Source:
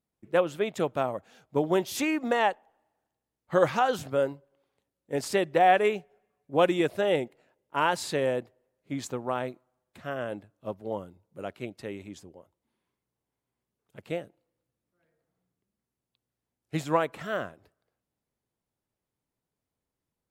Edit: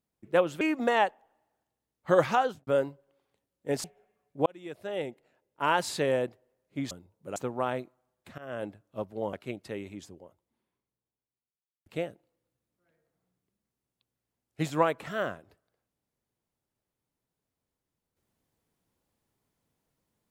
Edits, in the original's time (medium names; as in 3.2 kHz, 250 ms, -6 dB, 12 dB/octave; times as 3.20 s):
0.61–2.05 s: delete
3.79–4.11 s: studio fade out
5.28–5.98 s: delete
6.60–7.93 s: fade in
10.07–10.32 s: fade in, from -20.5 dB
11.02–11.47 s: move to 9.05 s
12.25–14.00 s: studio fade out